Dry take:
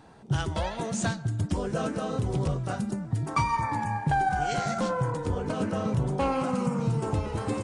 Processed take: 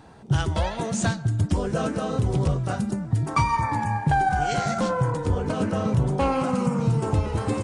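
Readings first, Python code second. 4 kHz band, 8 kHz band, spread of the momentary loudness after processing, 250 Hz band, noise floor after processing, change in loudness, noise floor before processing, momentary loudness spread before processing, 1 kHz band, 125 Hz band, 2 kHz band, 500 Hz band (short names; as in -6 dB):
+3.5 dB, +3.5 dB, 4 LU, +4.0 dB, -36 dBFS, +4.5 dB, -41 dBFS, 4 LU, +3.5 dB, +5.5 dB, +3.5 dB, +3.5 dB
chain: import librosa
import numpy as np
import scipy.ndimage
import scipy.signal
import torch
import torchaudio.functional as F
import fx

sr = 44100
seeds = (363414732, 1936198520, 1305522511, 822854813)

y = fx.peak_eq(x, sr, hz=74.0, db=4.0, octaves=1.3)
y = y * 10.0 ** (3.5 / 20.0)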